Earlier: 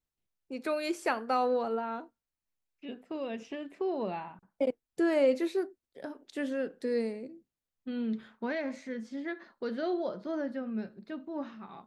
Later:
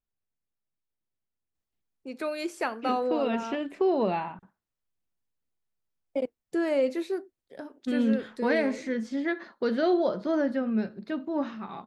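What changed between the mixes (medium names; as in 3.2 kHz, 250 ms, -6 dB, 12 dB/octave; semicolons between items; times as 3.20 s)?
first voice: entry +1.55 s; second voice +8.0 dB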